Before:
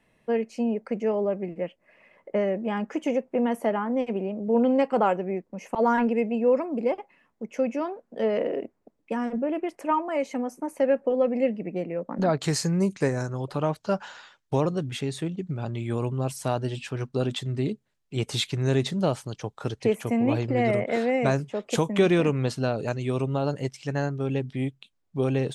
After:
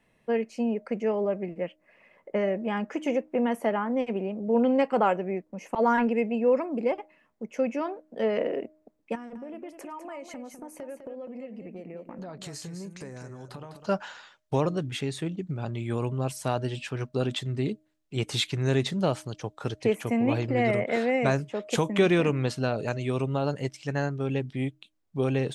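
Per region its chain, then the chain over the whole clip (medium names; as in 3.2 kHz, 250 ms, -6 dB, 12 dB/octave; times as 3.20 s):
9.15–13.86 s: treble shelf 8.4 kHz +5 dB + compression, threshold -36 dBFS + delay 203 ms -9 dB
whole clip: dynamic bell 2.1 kHz, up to +3 dB, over -42 dBFS, Q 0.79; de-hum 310 Hz, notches 2; trim -1.5 dB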